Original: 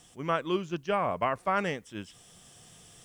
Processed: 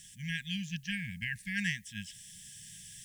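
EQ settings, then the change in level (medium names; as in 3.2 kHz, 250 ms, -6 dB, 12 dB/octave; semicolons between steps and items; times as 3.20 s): brick-wall FIR band-stop 230–1600 Hz; peaking EQ 1.4 kHz +13.5 dB 0.35 oct; treble shelf 5.1 kHz +8.5 dB; 0.0 dB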